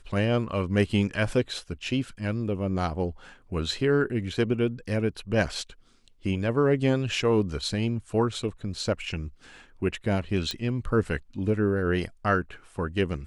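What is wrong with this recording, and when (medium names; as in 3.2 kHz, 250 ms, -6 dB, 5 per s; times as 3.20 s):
10.51 s: pop -16 dBFS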